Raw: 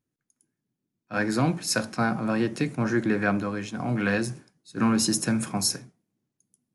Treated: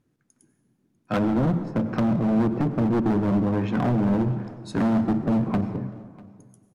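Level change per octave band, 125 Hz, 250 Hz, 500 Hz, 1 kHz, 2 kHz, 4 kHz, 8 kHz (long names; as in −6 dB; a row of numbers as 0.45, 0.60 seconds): +5.5 dB, +4.5 dB, +2.0 dB, +0.5 dB, −9.0 dB, below −10 dB, below −20 dB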